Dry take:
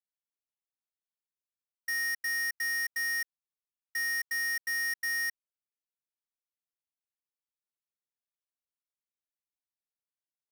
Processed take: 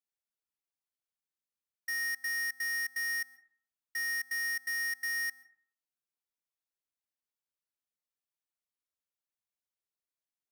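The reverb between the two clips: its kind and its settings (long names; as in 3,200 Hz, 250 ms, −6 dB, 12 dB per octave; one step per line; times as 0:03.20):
dense smooth reverb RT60 0.57 s, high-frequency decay 0.35×, pre-delay 110 ms, DRR 17.5 dB
level −2.5 dB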